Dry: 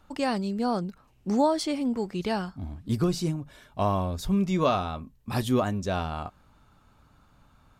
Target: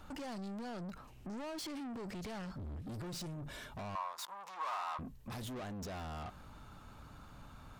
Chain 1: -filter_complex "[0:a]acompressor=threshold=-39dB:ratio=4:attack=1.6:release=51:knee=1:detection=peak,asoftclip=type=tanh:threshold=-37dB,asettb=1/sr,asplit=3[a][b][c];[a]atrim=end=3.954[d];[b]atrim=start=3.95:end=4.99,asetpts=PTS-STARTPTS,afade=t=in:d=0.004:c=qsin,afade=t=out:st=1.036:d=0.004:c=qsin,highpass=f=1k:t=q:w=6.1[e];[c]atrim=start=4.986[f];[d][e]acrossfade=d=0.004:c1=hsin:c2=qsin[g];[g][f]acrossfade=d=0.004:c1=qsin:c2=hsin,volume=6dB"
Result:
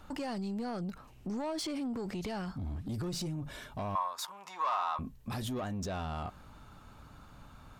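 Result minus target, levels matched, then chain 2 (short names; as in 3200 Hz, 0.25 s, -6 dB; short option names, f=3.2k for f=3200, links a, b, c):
soft clip: distortion -9 dB
-filter_complex "[0:a]acompressor=threshold=-39dB:ratio=4:attack=1.6:release=51:knee=1:detection=peak,asoftclip=type=tanh:threshold=-47.5dB,asettb=1/sr,asplit=3[a][b][c];[a]atrim=end=3.954[d];[b]atrim=start=3.95:end=4.99,asetpts=PTS-STARTPTS,afade=t=in:d=0.004:c=qsin,afade=t=out:st=1.036:d=0.004:c=qsin,highpass=f=1k:t=q:w=6.1[e];[c]atrim=start=4.986[f];[d][e]acrossfade=d=0.004:c1=hsin:c2=qsin[g];[g][f]acrossfade=d=0.004:c1=qsin:c2=hsin,volume=6dB"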